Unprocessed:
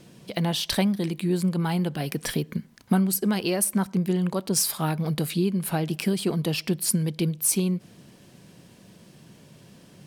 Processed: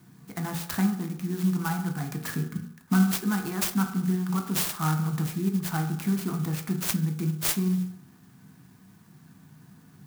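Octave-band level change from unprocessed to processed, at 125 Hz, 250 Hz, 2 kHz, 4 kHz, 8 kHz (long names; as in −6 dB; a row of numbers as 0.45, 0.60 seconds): −1.0, −1.5, −0.5, −6.0, −6.5 decibels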